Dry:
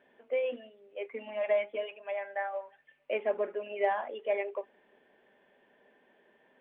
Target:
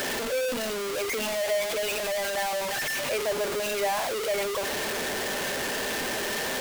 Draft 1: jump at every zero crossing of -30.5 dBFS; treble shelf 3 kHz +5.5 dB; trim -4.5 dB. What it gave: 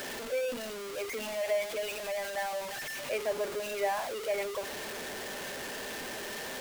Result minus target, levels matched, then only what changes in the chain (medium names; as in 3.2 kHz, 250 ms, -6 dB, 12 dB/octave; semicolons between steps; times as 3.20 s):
jump at every zero crossing: distortion -5 dB
change: jump at every zero crossing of -21 dBFS